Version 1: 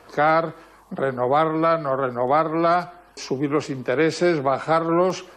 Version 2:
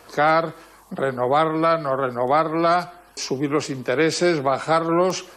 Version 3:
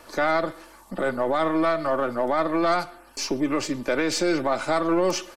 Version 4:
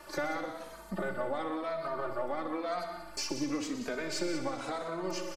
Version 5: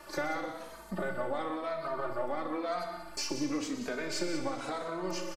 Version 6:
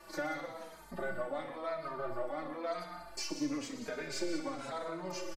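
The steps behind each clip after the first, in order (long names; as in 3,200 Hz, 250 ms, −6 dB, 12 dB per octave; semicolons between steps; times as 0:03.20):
high-shelf EQ 4,100 Hz +10 dB
gain on one half-wave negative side −3 dB; comb filter 3.4 ms, depth 48%; brickwall limiter −14 dBFS, peak gain reduction 7.5 dB
downward compressor 6 to 1, threshold −30 dBFS, peak gain reduction 11.5 dB; echo machine with several playback heads 61 ms, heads all three, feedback 49%, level −12.5 dB; barber-pole flanger 2.9 ms −0.96 Hz
double-tracking delay 33 ms −11 dB
barber-pole flanger 5.5 ms −1.9 Hz; level −1 dB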